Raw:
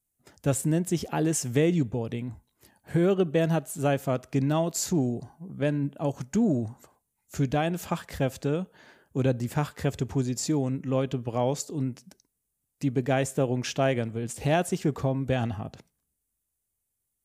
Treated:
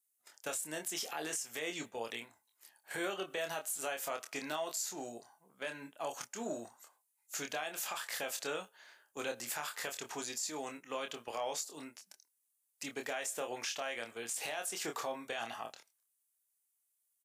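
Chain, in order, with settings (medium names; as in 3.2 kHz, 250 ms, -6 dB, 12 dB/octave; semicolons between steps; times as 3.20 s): high-pass 930 Hz 12 dB/octave; gate -50 dBFS, range -7 dB; treble shelf 4 kHz +5 dB; compression 10:1, threshold -34 dBFS, peak gain reduction 13.5 dB; peak limiter -30.5 dBFS, peak gain reduction 9.5 dB; doubling 26 ms -5.5 dB; trim +2 dB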